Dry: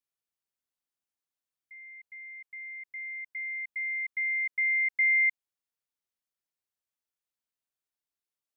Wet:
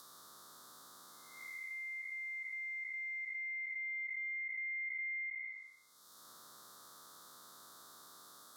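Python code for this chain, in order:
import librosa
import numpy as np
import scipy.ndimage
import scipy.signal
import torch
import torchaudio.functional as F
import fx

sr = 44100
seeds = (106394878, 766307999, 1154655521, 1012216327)

y = fx.spec_blur(x, sr, span_ms=433.0)
y = fx.high_shelf(y, sr, hz=2000.0, db=-11.5)
y = fx.env_lowpass_down(y, sr, base_hz=2100.0, full_db=-35.0)
y = fx.curve_eq(y, sr, hz=(850.0, 1200.0, 1800.0, 2600.0, 3600.0), db=(0, 14, -2, -21, 15))
y = fx.band_squash(y, sr, depth_pct=100)
y = F.gain(torch.from_numpy(y), 10.0).numpy()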